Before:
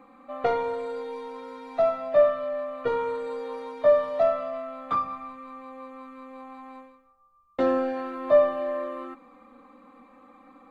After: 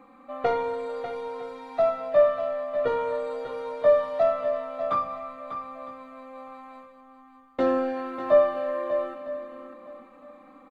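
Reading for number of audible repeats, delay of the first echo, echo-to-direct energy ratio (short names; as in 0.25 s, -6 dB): 4, 0.595 s, -9.5 dB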